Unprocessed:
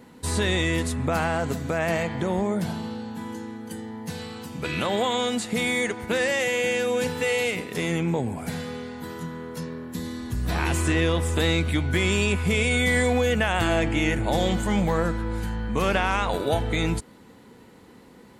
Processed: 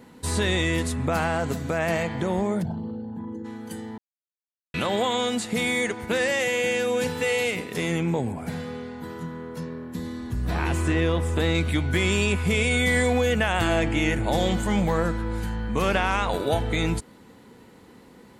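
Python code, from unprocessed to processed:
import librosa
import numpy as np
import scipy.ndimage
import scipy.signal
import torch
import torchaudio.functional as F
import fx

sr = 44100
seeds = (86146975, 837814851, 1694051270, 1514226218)

y = fx.envelope_sharpen(x, sr, power=2.0, at=(2.61, 3.44), fade=0.02)
y = fx.high_shelf(y, sr, hz=2800.0, db=-7.5, at=(8.32, 11.55))
y = fx.edit(y, sr, fx.silence(start_s=3.98, length_s=0.76), tone=tone)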